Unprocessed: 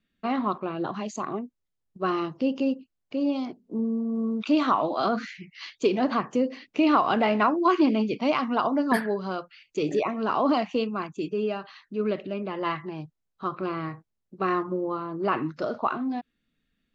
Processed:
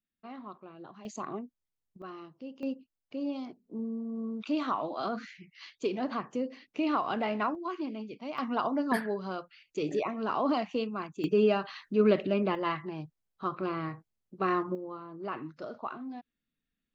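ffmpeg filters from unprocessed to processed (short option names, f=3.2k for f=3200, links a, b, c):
-af "asetnsamples=n=441:p=0,asendcmd='1.05 volume volume -6.5dB;2.02 volume volume -18dB;2.63 volume volume -8.5dB;7.55 volume volume -15dB;8.38 volume volume -5.5dB;11.24 volume volume 3.5dB;12.55 volume volume -3dB;14.75 volume volume -11.5dB',volume=-18dB"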